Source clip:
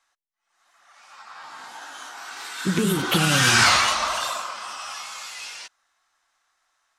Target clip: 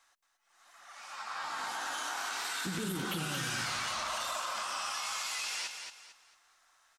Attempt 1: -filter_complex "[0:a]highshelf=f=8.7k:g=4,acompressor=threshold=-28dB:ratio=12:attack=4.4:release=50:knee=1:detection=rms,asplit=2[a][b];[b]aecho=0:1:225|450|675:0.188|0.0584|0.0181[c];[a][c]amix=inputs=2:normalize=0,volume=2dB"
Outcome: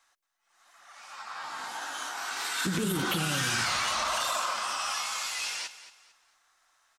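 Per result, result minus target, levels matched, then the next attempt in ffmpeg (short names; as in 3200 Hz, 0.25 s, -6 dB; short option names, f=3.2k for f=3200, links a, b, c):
compressor: peak gain reduction -7.5 dB; echo-to-direct -8 dB
-filter_complex "[0:a]highshelf=f=8.7k:g=4,acompressor=threshold=-36dB:ratio=12:attack=4.4:release=50:knee=1:detection=rms,asplit=2[a][b];[b]aecho=0:1:225|450|675:0.188|0.0584|0.0181[c];[a][c]amix=inputs=2:normalize=0,volume=2dB"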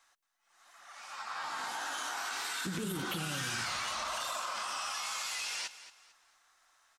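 echo-to-direct -8 dB
-filter_complex "[0:a]highshelf=f=8.7k:g=4,acompressor=threshold=-36dB:ratio=12:attack=4.4:release=50:knee=1:detection=rms,asplit=2[a][b];[b]aecho=0:1:225|450|675|900:0.473|0.147|0.0455|0.0141[c];[a][c]amix=inputs=2:normalize=0,volume=2dB"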